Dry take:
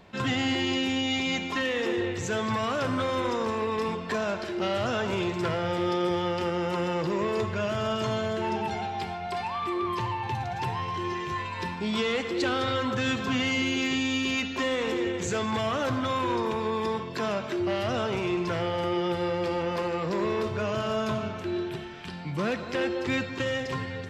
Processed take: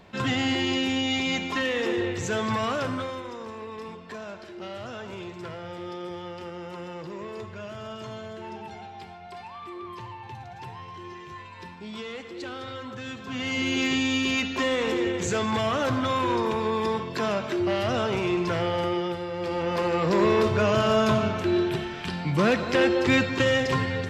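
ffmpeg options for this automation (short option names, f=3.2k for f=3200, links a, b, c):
-af "volume=26dB,afade=t=out:st=2.69:d=0.54:silence=0.281838,afade=t=in:st=13.25:d=0.55:silence=0.251189,afade=t=out:st=18.79:d=0.48:silence=0.398107,afade=t=in:st=19.27:d=0.96:silence=0.237137"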